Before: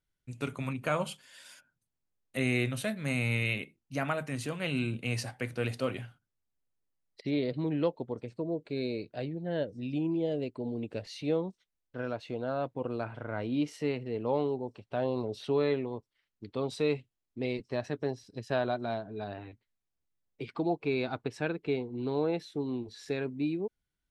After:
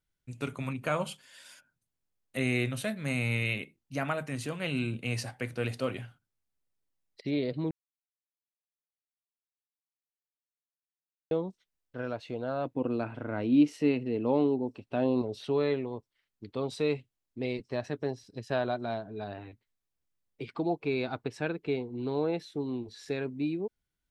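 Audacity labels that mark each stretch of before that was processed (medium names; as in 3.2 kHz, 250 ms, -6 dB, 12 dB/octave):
7.710000	11.310000	mute
12.650000	15.220000	small resonant body resonances 270/2600 Hz, height 9 dB, ringing for 25 ms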